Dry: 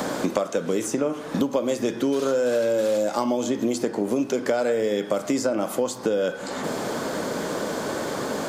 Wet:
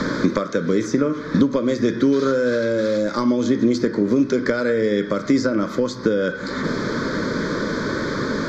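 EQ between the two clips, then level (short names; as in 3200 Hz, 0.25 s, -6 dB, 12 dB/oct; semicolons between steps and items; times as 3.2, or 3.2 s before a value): LPF 4500 Hz 12 dB/oct; low shelf 63 Hz +11.5 dB; fixed phaser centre 2800 Hz, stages 6; +8.0 dB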